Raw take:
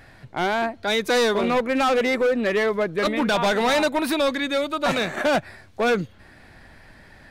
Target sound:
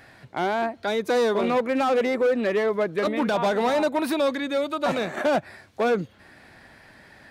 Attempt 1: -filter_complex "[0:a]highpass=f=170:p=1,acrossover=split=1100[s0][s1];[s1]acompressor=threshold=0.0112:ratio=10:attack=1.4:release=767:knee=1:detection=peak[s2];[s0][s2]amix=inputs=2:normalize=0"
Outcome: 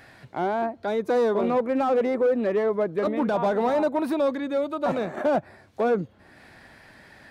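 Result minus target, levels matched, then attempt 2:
compression: peak gain reduction +10.5 dB
-filter_complex "[0:a]highpass=f=170:p=1,acrossover=split=1100[s0][s1];[s1]acompressor=threshold=0.0422:ratio=10:attack=1.4:release=767:knee=1:detection=peak[s2];[s0][s2]amix=inputs=2:normalize=0"

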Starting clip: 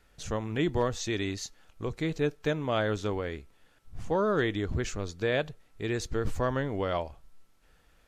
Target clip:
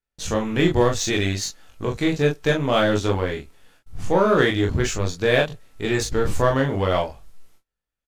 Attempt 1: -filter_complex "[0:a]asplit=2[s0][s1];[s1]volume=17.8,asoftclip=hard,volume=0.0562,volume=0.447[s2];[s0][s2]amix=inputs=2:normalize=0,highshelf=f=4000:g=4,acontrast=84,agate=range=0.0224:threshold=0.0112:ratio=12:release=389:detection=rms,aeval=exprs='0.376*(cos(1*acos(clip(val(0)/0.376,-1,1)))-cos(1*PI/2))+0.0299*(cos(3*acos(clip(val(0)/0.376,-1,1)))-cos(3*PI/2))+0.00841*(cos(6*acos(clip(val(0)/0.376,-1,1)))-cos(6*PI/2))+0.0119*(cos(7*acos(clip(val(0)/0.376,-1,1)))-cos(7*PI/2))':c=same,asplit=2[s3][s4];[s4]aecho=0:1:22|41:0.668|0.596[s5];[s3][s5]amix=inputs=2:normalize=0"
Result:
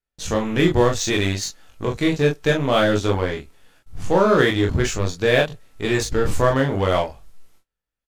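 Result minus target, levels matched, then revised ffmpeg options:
overload inside the chain: distortion -7 dB
-filter_complex "[0:a]asplit=2[s0][s1];[s1]volume=42.2,asoftclip=hard,volume=0.0237,volume=0.447[s2];[s0][s2]amix=inputs=2:normalize=0,highshelf=f=4000:g=4,acontrast=84,agate=range=0.0224:threshold=0.0112:ratio=12:release=389:detection=rms,aeval=exprs='0.376*(cos(1*acos(clip(val(0)/0.376,-1,1)))-cos(1*PI/2))+0.0299*(cos(3*acos(clip(val(0)/0.376,-1,1)))-cos(3*PI/2))+0.00841*(cos(6*acos(clip(val(0)/0.376,-1,1)))-cos(6*PI/2))+0.0119*(cos(7*acos(clip(val(0)/0.376,-1,1)))-cos(7*PI/2))':c=same,asplit=2[s3][s4];[s4]aecho=0:1:22|41:0.668|0.596[s5];[s3][s5]amix=inputs=2:normalize=0"

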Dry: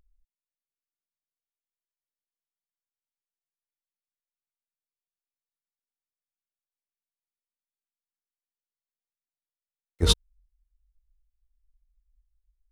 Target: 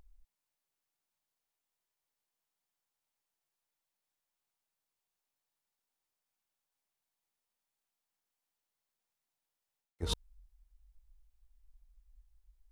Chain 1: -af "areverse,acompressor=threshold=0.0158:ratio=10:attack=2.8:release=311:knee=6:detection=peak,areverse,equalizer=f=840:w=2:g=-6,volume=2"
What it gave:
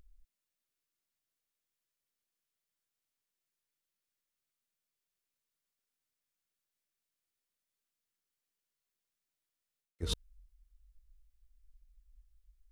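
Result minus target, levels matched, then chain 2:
1 kHz band -7.0 dB
-af "areverse,acompressor=threshold=0.0158:ratio=10:attack=2.8:release=311:knee=6:detection=peak,areverse,equalizer=f=840:w=2:g=5.5,volume=2"

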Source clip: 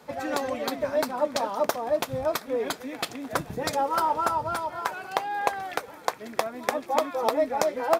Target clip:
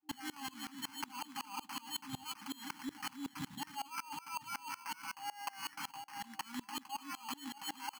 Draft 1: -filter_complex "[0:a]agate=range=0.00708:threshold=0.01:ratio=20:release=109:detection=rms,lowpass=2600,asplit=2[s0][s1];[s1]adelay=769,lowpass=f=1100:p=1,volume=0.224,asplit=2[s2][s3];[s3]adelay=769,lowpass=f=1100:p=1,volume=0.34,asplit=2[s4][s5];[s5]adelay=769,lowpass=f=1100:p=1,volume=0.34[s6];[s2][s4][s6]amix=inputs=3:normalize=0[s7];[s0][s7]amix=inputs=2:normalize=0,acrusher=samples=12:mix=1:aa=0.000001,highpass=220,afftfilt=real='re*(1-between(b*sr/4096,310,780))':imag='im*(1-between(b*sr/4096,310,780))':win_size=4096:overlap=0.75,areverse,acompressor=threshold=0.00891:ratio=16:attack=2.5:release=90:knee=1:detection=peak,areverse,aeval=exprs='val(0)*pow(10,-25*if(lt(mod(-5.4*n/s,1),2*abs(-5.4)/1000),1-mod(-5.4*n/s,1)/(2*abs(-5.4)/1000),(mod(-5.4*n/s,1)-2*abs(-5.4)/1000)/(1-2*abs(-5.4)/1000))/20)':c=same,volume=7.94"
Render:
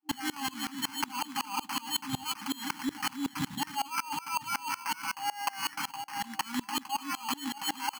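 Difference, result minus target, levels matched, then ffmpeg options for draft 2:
compression: peak gain reduction -10 dB
-filter_complex "[0:a]agate=range=0.00708:threshold=0.01:ratio=20:release=109:detection=rms,lowpass=2600,asplit=2[s0][s1];[s1]adelay=769,lowpass=f=1100:p=1,volume=0.224,asplit=2[s2][s3];[s3]adelay=769,lowpass=f=1100:p=1,volume=0.34,asplit=2[s4][s5];[s5]adelay=769,lowpass=f=1100:p=1,volume=0.34[s6];[s2][s4][s6]amix=inputs=3:normalize=0[s7];[s0][s7]amix=inputs=2:normalize=0,acrusher=samples=12:mix=1:aa=0.000001,highpass=220,afftfilt=real='re*(1-between(b*sr/4096,310,780))':imag='im*(1-between(b*sr/4096,310,780))':win_size=4096:overlap=0.75,areverse,acompressor=threshold=0.00266:ratio=16:attack=2.5:release=90:knee=1:detection=peak,areverse,aeval=exprs='val(0)*pow(10,-25*if(lt(mod(-5.4*n/s,1),2*abs(-5.4)/1000),1-mod(-5.4*n/s,1)/(2*abs(-5.4)/1000),(mod(-5.4*n/s,1)-2*abs(-5.4)/1000)/(1-2*abs(-5.4)/1000))/20)':c=same,volume=7.94"

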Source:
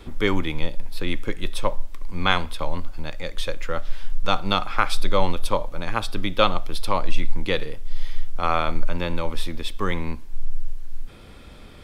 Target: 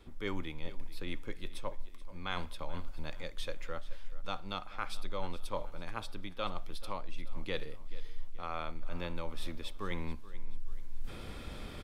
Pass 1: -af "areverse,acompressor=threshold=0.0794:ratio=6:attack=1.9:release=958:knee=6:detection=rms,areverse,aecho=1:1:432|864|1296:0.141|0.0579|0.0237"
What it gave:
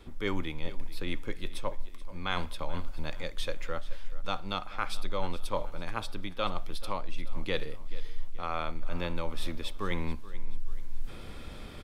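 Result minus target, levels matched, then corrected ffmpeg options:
compression: peak gain reduction -5.5 dB
-af "areverse,acompressor=threshold=0.0376:ratio=6:attack=1.9:release=958:knee=6:detection=rms,areverse,aecho=1:1:432|864|1296:0.141|0.0579|0.0237"

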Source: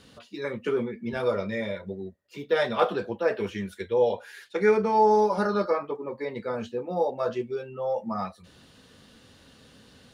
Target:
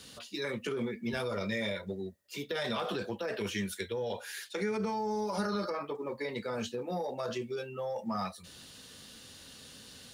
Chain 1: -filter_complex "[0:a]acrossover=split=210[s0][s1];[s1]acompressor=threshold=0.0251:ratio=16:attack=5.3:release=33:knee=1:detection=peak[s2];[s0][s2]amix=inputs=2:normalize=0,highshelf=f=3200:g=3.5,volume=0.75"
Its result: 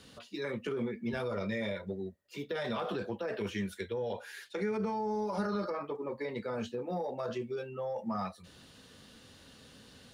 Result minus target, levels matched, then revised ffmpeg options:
8 kHz band -8.5 dB
-filter_complex "[0:a]acrossover=split=210[s0][s1];[s1]acompressor=threshold=0.0251:ratio=16:attack=5.3:release=33:knee=1:detection=peak[s2];[s0][s2]amix=inputs=2:normalize=0,highshelf=f=3200:g=15,volume=0.75"

